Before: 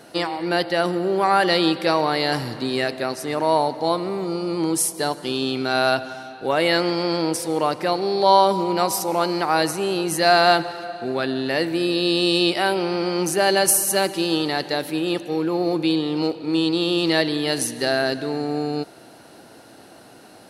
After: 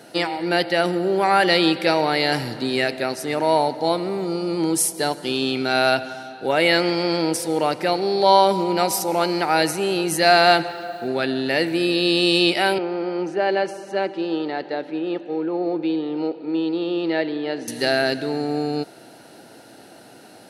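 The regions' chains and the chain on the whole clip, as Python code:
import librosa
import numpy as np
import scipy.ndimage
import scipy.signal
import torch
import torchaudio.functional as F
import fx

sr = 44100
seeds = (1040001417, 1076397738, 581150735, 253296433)

y = fx.chain(x, sr, fx.lowpass(hz=4800.0, slope=12),
    fx.quant_dither(seeds[0], bits=10, dither='triangular'), at=(10.68, 11.08))
y = fx.chain(y, sr, fx.highpass(hz=260.0, slope=12),
    fx.spacing_loss(db_at_10k=36), at=(12.78, 17.68))
y = scipy.signal.sosfilt(scipy.signal.butter(2, 100.0, 'highpass', fs=sr, output='sos'), y)
y = fx.notch(y, sr, hz=1100.0, q=5.6)
y = fx.dynamic_eq(y, sr, hz=2300.0, q=2.8, threshold_db=-39.0, ratio=4.0, max_db=5)
y = F.gain(torch.from_numpy(y), 1.0).numpy()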